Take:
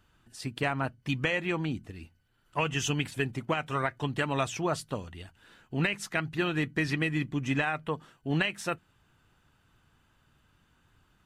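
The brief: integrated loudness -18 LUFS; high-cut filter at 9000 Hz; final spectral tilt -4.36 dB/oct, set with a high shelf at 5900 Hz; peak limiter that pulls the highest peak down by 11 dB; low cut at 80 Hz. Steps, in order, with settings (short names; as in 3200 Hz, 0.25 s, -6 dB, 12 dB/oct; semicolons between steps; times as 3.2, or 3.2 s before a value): HPF 80 Hz; LPF 9000 Hz; high shelf 5900 Hz +9 dB; gain +16.5 dB; limiter -6.5 dBFS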